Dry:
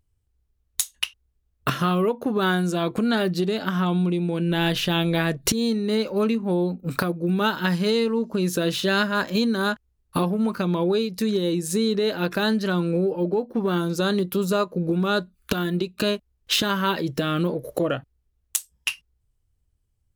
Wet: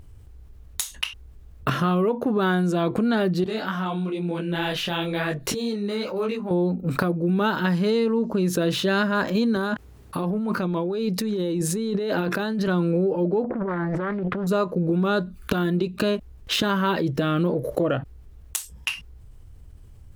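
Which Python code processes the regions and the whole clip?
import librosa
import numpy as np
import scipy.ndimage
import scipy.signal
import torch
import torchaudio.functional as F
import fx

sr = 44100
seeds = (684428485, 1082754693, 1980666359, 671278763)

y = fx.chain(x, sr, fx.low_shelf(hz=450.0, db=-9.5),
    fx.detune_double(cents=36), at=(3.44, 6.51))
y = fx.chain(y, sr, fx.highpass(hz=110.0, slope=12),
    fx.over_compress(threshold_db=-29.0, ratio=-1.0), at=(9.56, 12.68))
y = fx.chain(y, sr, fx.over_compress(threshold_db=-32.0, ratio=-1.0),
    fx.lowpass_res(hz=1600.0, q=2.3),
    fx.doppler_dist(depth_ms=0.79), at=(13.44, 14.47))
y = fx.high_shelf(y, sr, hz=2500.0, db=-9.5)
y = fx.env_flatten(y, sr, amount_pct=50)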